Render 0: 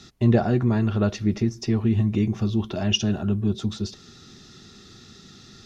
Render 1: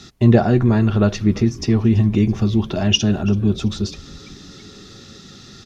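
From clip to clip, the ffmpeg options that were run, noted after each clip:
ffmpeg -i in.wav -filter_complex "[0:a]asplit=6[link_01][link_02][link_03][link_04][link_05][link_06];[link_02]adelay=332,afreqshift=-130,volume=-20.5dB[link_07];[link_03]adelay=664,afreqshift=-260,volume=-25.1dB[link_08];[link_04]adelay=996,afreqshift=-390,volume=-29.7dB[link_09];[link_05]adelay=1328,afreqshift=-520,volume=-34.2dB[link_10];[link_06]adelay=1660,afreqshift=-650,volume=-38.8dB[link_11];[link_01][link_07][link_08][link_09][link_10][link_11]amix=inputs=6:normalize=0,volume=6dB" out.wav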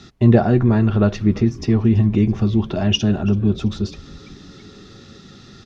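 ffmpeg -i in.wav -af "lowpass=frequency=2800:poles=1" out.wav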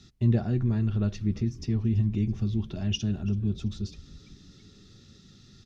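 ffmpeg -i in.wav -af "equalizer=frequency=830:width=0.35:gain=-14.5,volume=-6dB" out.wav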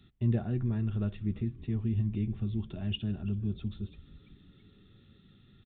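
ffmpeg -i in.wav -af "aresample=8000,aresample=44100,volume=-5dB" out.wav

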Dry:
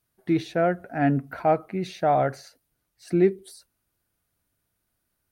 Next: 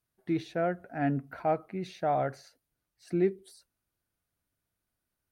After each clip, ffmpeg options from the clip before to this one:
ffmpeg -i in.wav -af "highshelf=frequency=9100:gain=-4,volume=-7dB" out.wav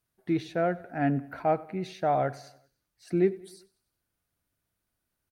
ffmpeg -i in.wav -af "aecho=1:1:96|192|288|384:0.0891|0.0463|0.0241|0.0125,volume=2.5dB" out.wav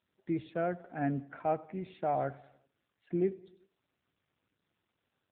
ffmpeg -i in.wav -af "volume=-5dB" -ar 8000 -c:a libopencore_amrnb -b:a 7400 out.amr

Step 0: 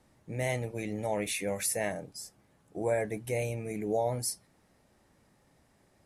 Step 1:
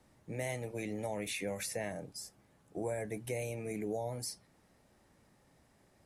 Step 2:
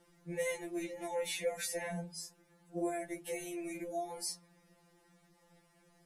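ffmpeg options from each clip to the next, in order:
ffmpeg -i in.wav -filter_complex "[0:a]acrossover=split=230|5800[link_01][link_02][link_03];[link_01]acompressor=threshold=-43dB:ratio=4[link_04];[link_02]acompressor=threshold=-35dB:ratio=4[link_05];[link_03]acompressor=threshold=-44dB:ratio=4[link_06];[link_04][link_05][link_06]amix=inputs=3:normalize=0,volume=-1dB" out.wav
ffmpeg -i in.wav -af "bandreject=frequency=54.34:width_type=h:width=4,bandreject=frequency=108.68:width_type=h:width=4,bandreject=frequency=163.02:width_type=h:width=4,bandreject=frequency=217.36:width_type=h:width=4,bandreject=frequency=271.7:width_type=h:width=4,bandreject=frequency=326.04:width_type=h:width=4,bandreject=frequency=380.38:width_type=h:width=4,bandreject=frequency=434.72:width_type=h:width=4,bandreject=frequency=489.06:width_type=h:width=4,bandreject=frequency=543.4:width_type=h:width=4,bandreject=frequency=597.74:width_type=h:width=4,bandreject=frequency=652.08:width_type=h:width=4,bandreject=frequency=706.42:width_type=h:width=4,bandreject=frequency=760.76:width_type=h:width=4,bandreject=frequency=815.1:width_type=h:width=4,bandreject=frequency=869.44:width_type=h:width=4,bandreject=frequency=923.78:width_type=h:width=4,bandreject=frequency=978.12:width_type=h:width=4,afftfilt=real='re*2.83*eq(mod(b,8),0)':imag='im*2.83*eq(mod(b,8),0)':win_size=2048:overlap=0.75,volume=3.5dB" out.wav

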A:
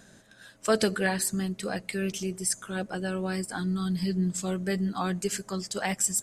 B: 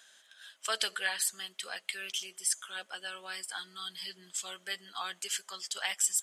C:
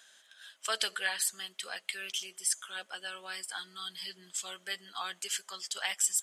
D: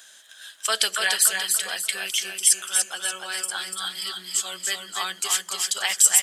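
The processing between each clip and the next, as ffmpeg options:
ffmpeg -i in.wav -af "highpass=1200,equalizer=frequency=3200:width_type=o:width=0.28:gain=12,volume=-2dB" out.wav
ffmpeg -i in.wav -af anull out.wav
ffmpeg -i in.wav -filter_complex "[0:a]crystalizer=i=1:c=0,asplit=2[link_01][link_02];[link_02]aecho=0:1:291|582|873|1164|1455:0.596|0.238|0.0953|0.0381|0.0152[link_03];[link_01][link_03]amix=inputs=2:normalize=0,volume=7.5dB" out.wav

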